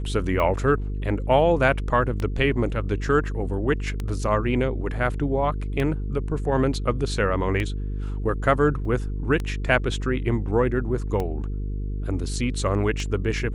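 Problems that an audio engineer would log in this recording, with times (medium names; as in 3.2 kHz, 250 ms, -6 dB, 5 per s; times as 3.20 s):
buzz 50 Hz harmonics 9 -28 dBFS
tick 33 1/3 rpm -15 dBFS
8.85 s: dropout 3.5 ms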